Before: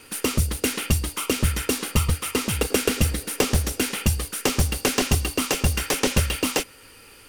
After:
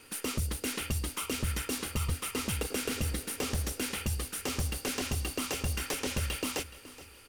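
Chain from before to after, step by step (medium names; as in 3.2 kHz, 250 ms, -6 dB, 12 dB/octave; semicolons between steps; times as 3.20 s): peak limiter -15 dBFS, peak gain reduction 8 dB; feedback delay 423 ms, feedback 39%, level -17 dB; trim -7 dB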